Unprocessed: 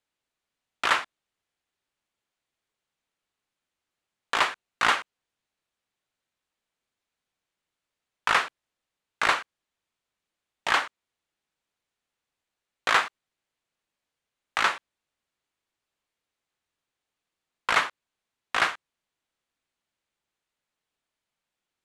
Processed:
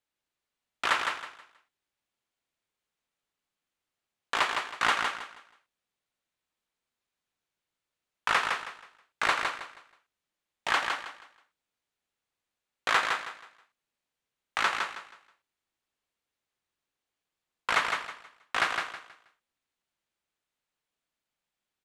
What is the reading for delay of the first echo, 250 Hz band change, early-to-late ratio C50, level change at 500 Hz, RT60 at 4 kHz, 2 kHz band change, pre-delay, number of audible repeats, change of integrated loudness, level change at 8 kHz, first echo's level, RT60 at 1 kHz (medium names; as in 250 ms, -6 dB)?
160 ms, -2.0 dB, no reverb, -2.0 dB, no reverb, -2.0 dB, no reverb, 3, -3.5 dB, -2.0 dB, -5.0 dB, no reverb